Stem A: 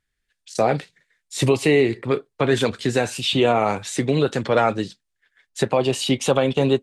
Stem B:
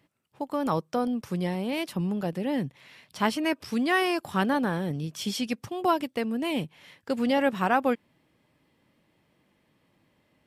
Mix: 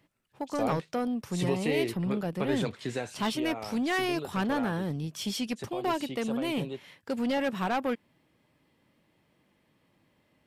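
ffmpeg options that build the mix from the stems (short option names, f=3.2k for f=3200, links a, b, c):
-filter_complex "[0:a]volume=-12.5dB,afade=t=out:st=2.91:d=0.45:silence=0.421697[a];[1:a]asoftclip=type=tanh:threshold=-22dB,volume=-1dB[b];[a][b]amix=inputs=2:normalize=0"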